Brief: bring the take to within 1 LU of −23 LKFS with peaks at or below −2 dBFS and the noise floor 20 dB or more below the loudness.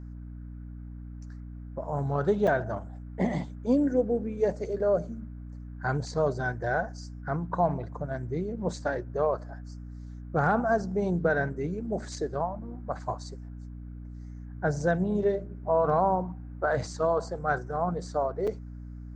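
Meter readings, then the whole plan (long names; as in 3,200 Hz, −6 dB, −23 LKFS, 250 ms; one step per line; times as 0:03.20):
number of dropouts 2; longest dropout 5.4 ms; mains hum 60 Hz; hum harmonics up to 300 Hz; level of the hum −39 dBFS; integrated loudness −29.0 LKFS; sample peak −13.5 dBFS; target loudness −23.0 LKFS
→ repair the gap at 0:02.47/0:18.47, 5.4 ms
hum removal 60 Hz, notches 5
level +6 dB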